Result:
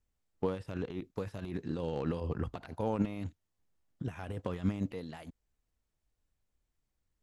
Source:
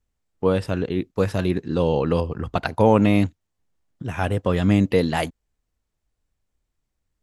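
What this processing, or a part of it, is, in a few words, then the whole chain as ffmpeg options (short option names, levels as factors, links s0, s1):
de-esser from a sidechain: -filter_complex "[0:a]asplit=2[s0][s1];[s1]highpass=5000,apad=whole_len=318548[s2];[s0][s2]sidechaincompress=threshold=0.001:ratio=6:attack=3.5:release=31,volume=0.562"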